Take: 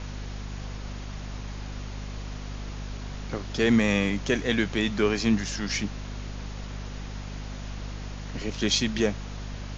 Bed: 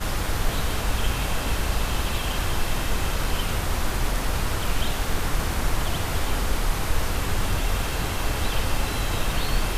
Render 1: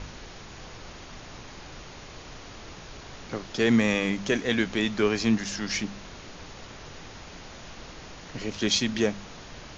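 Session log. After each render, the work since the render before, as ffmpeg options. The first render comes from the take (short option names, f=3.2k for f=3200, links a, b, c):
-af "bandreject=f=50:t=h:w=4,bandreject=f=100:t=h:w=4,bandreject=f=150:t=h:w=4,bandreject=f=200:t=h:w=4,bandreject=f=250:t=h:w=4"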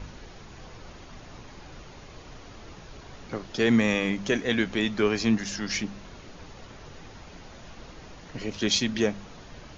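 -af "afftdn=nr=6:nf=-44"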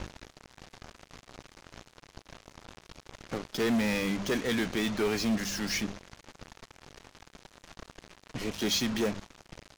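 -af "asoftclip=type=tanh:threshold=-24dB,acrusher=bits=5:mix=0:aa=0.5"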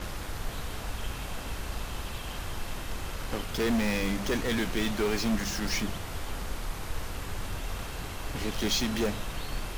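-filter_complex "[1:a]volume=-11dB[a];[0:a][a]amix=inputs=2:normalize=0"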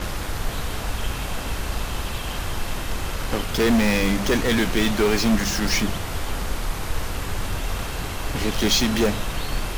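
-af "volume=8.5dB"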